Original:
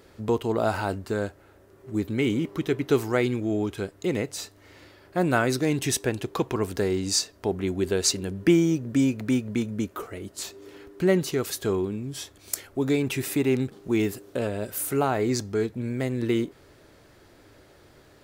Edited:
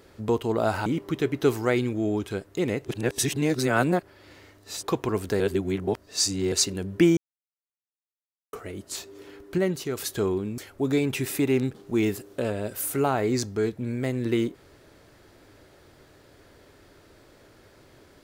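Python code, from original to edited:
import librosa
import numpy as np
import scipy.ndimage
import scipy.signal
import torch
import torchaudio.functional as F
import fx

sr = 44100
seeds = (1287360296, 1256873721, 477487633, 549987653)

y = fx.edit(x, sr, fx.cut(start_s=0.86, length_s=1.47),
    fx.reverse_span(start_s=4.32, length_s=1.98),
    fx.reverse_span(start_s=6.87, length_s=1.12),
    fx.silence(start_s=8.64, length_s=1.36),
    fx.clip_gain(start_s=11.05, length_s=0.39, db=-4.0),
    fx.cut(start_s=12.05, length_s=0.5), tone=tone)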